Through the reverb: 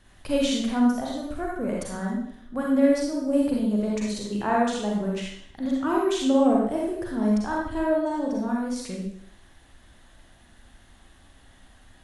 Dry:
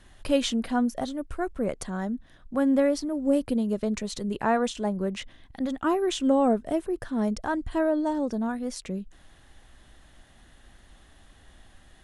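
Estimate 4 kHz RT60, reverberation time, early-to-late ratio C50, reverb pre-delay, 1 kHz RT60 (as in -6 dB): 0.60 s, 0.70 s, -0.5 dB, 32 ms, 0.65 s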